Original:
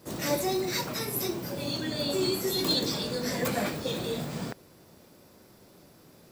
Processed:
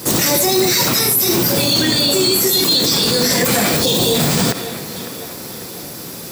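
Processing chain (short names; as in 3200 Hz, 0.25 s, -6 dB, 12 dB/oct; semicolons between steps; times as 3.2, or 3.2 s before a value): HPF 58 Hz; tape echo 0.548 s, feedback 54%, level -18.5 dB, low-pass 6000 Hz; on a send at -13 dB: reverb RT60 0.30 s, pre-delay 40 ms; on the sum: spectral gain 3.83–4.15, 1100–2700 Hz -8 dB; high shelf 3600 Hz +11 dB; notch 610 Hz, Q 12; maximiser +26 dB; gain -5 dB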